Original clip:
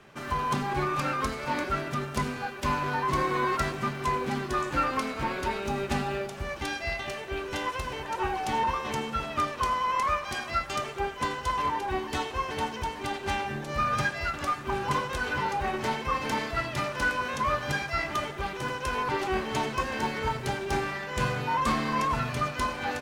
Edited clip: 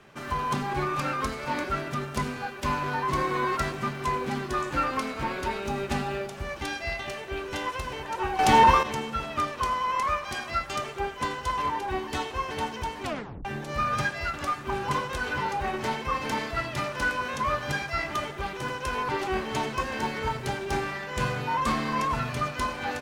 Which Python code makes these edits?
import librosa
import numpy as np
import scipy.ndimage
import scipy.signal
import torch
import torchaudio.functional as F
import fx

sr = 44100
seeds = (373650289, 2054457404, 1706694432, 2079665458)

y = fx.edit(x, sr, fx.clip_gain(start_s=8.39, length_s=0.44, db=10.5),
    fx.tape_stop(start_s=13.03, length_s=0.42), tone=tone)